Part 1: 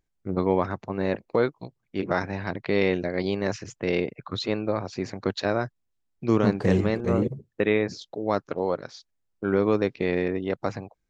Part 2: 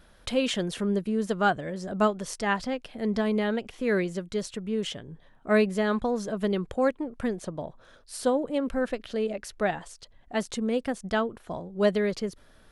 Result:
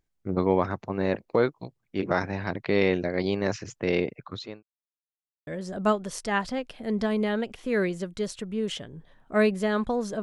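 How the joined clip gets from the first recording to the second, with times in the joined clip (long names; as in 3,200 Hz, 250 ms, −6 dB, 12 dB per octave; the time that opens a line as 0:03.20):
part 1
0:04.08–0:04.63: fade out linear
0:04.63–0:05.47: silence
0:05.47: continue with part 2 from 0:01.62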